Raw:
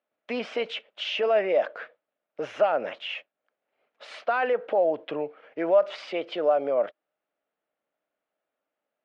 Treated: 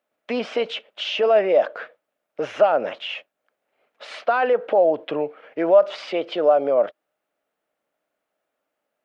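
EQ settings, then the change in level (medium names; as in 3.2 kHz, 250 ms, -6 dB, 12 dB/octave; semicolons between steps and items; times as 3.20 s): dynamic bell 2.1 kHz, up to -5 dB, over -42 dBFS, Q 1.6; +6.0 dB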